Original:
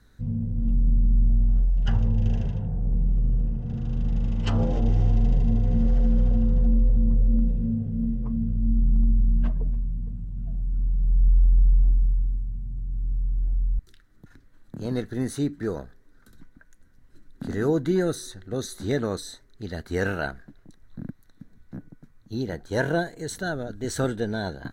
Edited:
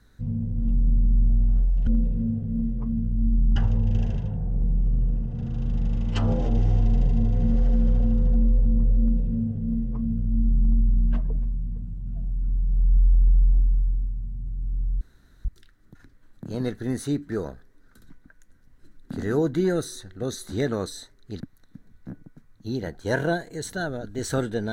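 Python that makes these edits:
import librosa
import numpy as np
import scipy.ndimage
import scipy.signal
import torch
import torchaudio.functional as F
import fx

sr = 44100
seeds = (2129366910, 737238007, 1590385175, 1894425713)

y = fx.edit(x, sr, fx.duplicate(start_s=7.31, length_s=1.69, to_s=1.87),
    fx.room_tone_fill(start_s=13.32, length_s=0.44),
    fx.cut(start_s=19.71, length_s=1.35), tone=tone)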